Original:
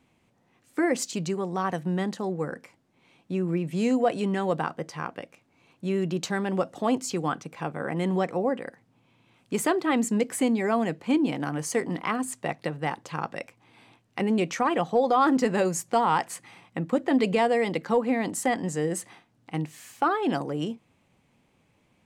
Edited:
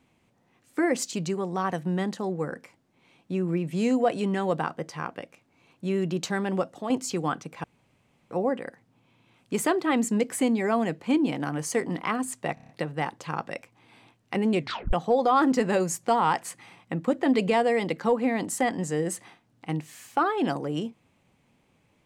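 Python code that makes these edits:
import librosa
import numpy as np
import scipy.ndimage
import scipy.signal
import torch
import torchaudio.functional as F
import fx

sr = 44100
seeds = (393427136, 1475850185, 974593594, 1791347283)

y = fx.edit(x, sr, fx.fade_out_to(start_s=6.55, length_s=0.35, floor_db=-8.0),
    fx.room_tone_fill(start_s=7.64, length_s=0.67),
    fx.stutter(start_s=12.54, slice_s=0.03, count=6),
    fx.tape_stop(start_s=14.43, length_s=0.35), tone=tone)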